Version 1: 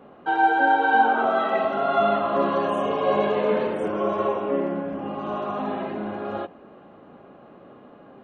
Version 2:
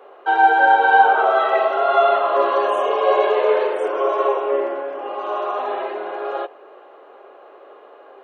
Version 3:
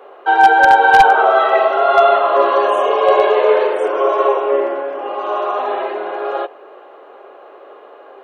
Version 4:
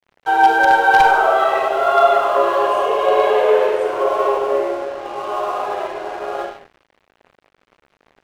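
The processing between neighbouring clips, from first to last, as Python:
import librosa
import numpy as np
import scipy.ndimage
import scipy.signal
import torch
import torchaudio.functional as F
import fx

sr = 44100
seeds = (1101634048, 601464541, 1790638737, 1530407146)

y1 = scipy.signal.sosfilt(scipy.signal.ellip(4, 1.0, 70, 390.0, 'highpass', fs=sr, output='sos'), x)
y1 = F.gain(torch.from_numpy(y1), 6.0).numpy()
y2 = 10.0 ** (-5.5 / 20.0) * (np.abs((y1 / 10.0 ** (-5.5 / 20.0) + 3.0) % 4.0 - 2.0) - 1.0)
y2 = F.gain(torch.from_numpy(y2), 4.5).numpy()
y3 = fx.rev_schroeder(y2, sr, rt60_s=0.73, comb_ms=33, drr_db=3.5)
y3 = np.sign(y3) * np.maximum(np.abs(y3) - 10.0 ** (-33.0 / 20.0), 0.0)
y3 = F.gain(torch.from_numpy(y3), -3.5).numpy()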